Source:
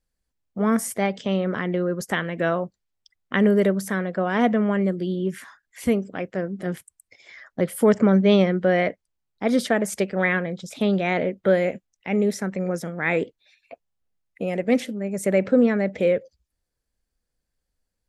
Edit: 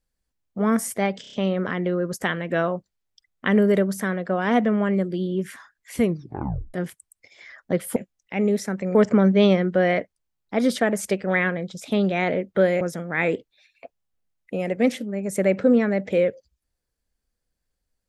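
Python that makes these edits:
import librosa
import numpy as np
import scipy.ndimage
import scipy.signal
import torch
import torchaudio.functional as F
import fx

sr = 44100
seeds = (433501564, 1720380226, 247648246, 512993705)

y = fx.edit(x, sr, fx.stutter(start_s=1.21, slice_s=0.03, count=5),
    fx.tape_stop(start_s=5.9, length_s=0.72),
    fx.move(start_s=11.7, length_s=0.99, to_s=7.84), tone=tone)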